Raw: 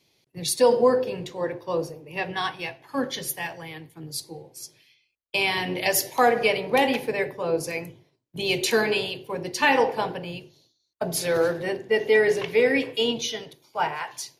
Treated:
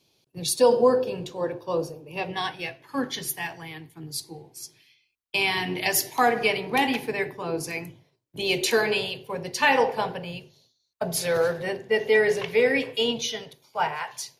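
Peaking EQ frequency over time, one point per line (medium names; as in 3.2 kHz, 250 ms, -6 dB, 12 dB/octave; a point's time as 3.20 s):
peaking EQ -14.5 dB 0.22 oct
2.14 s 2 kHz
3.09 s 540 Hz
7.85 s 540 Hz
8.58 s 110 Hz
8.93 s 320 Hz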